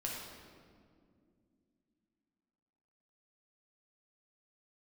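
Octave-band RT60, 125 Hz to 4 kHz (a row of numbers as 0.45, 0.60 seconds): 3.1, 3.9, 2.7, 1.8, 1.5, 1.3 seconds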